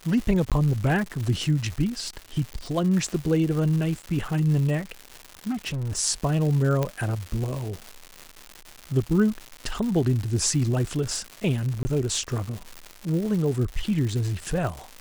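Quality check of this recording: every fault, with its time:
crackle 290 per s -30 dBFS
0.50–0.52 s: dropout 17 ms
2.53 s: pop
5.50–5.98 s: clipped -26 dBFS
6.83 s: pop -12 dBFS
11.83–11.85 s: dropout 20 ms

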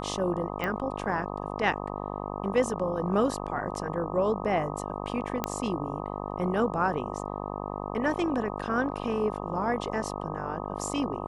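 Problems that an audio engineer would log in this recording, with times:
buzz 50 Hz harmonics 25 -35 dBFS
0.64 s: pop -18 dBFS
5.44 s: pop -12 dBFS

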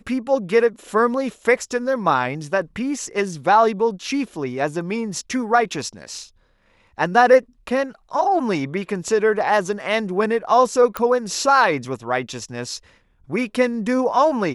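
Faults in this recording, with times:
10.97 s: pop -9 dBFS

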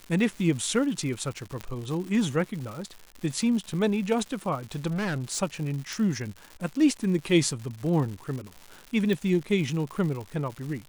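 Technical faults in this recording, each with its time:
crackle 240 per s -35 dBFS
1.61 s: pop -19 dBFS
4.89–5.39 s: clipped -26 dBFS
5.93 s: pop
9.13 s: pop

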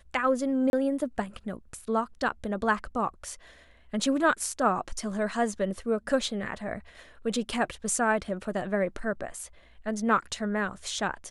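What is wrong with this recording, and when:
0.70–0.73 s: dropout 31 ms

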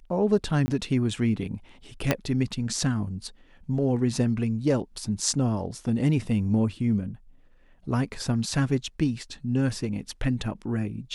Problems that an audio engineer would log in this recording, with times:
0.66–0.68 s: dropout 20 ms
2.11 s: pop -7 dBFS

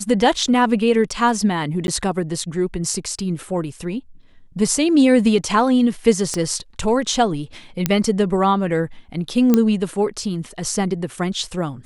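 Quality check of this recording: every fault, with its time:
1.87–1.88 s: dropout 11 ms
6.34 s: pop -11 dBFS
7.86 s: pop -2 dBFS
9.54 s: pop -3 dBFS

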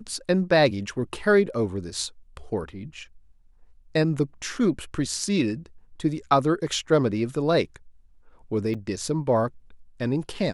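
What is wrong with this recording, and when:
8.74–8.75 s: dropout 5.7 ms

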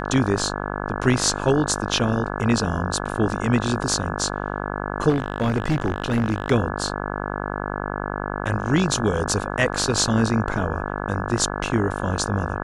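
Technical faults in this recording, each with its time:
buzz 50 Hz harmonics 34 -28 dBFS
5.09–6.50 s: clipped -16 dBFS

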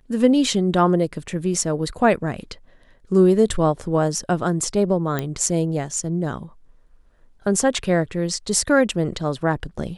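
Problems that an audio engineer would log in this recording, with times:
5.19 s: pop -10 dBFS

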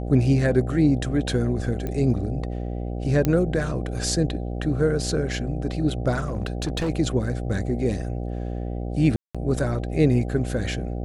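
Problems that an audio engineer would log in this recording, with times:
buzz 60 Hz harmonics 13 -29 dBFS
1.87 s: pop -17 dBFS
3.25 s: pop -9 dBFS
6.18–6.90 s: clipped -21 dBFS
9.16–9.35 s: dropout 186 ms

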